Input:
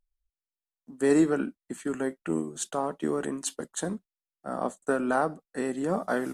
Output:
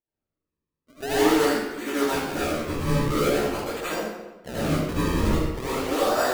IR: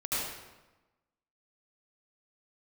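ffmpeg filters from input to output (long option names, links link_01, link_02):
-filter_complex "[0:a]highpass=290,asplit=2[link_01][link_02];[link_02]highpass=frequency=720:poles=1,volume=19dB,asoftclip=type=tanh:threshold=-12.5dB[link_03];[link_01][link_03]amix=inputs=2:normalize=0,lowpass=frequency=3700:poles=1,volume=-6dB,acrusher=samples=35:mix=1:aa=0.000001:lfo=1:lforange=56:lforate=0.45,asettb=1/sr,asplit=3[link_04][link_05][link_06];[link_04]atrim=end=1.314[link_07];[link_05]atrim=start=1.31:end=3.37,asetpts=PTS-STARTPTS,afade=type=in:duration=0.004:curve=qsin,afade=type=out:start_time=2.056:duration=0.004:curve=qsin,asplit=2[link_08][link_09];[link_09]adelay=14,volume=-3dB[link_10];[link_08][link_10]amix=inputs=2:normalize=0,atrim=end_sample=90846[link_11];[link_06]atrim=start=3.366[link_12];[link_07][link_11]acrossfade=duration=0.004:curve1=hsin:curve2=qsin[link_13];[link_13][link_12]acrossfade=duration=0.004:curve1=qsin:curve2=hsin[link_14];[1:a]atrim=start_sample=2205[link_15];[link_14][link_15]afir=irnorm=-1:irlink=0,volume=-6.5dB"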